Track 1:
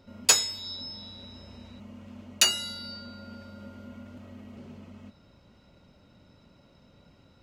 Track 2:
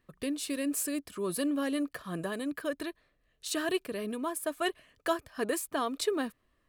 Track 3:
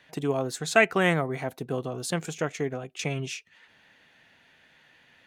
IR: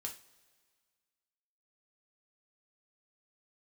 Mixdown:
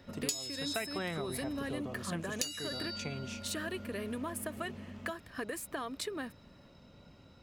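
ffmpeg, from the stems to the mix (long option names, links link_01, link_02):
-filter_complex "[0:a]acrossover=split=190|3000[link_01][link_02][link_03];[link_02]acompressor=threshold=-44dB:ratio=6[link_04];[link_01][link_04][link_03]amix=inputs=3:normalize=0,volume=0.5dB[link_05];[1:a]equalizer=frequency=1900:width_type=o:width=0.77:gain=6,acompressor=threshold=-35dB:ratio=6,volume=0dB[link_06];[2:a]volume=-10dB[link_07];[link_05][link_06][link_07]amix=inputs=3:normalize=0,acompressor=threshold=-32dB:ratio=12"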